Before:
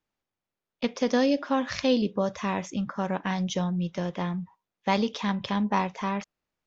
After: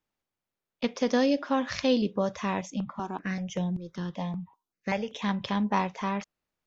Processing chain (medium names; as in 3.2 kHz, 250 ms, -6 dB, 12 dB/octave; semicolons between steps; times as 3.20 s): 2.61–5.22 s: stepped phaser 5.2 Hz 380–4700 Hz; trim -1 dB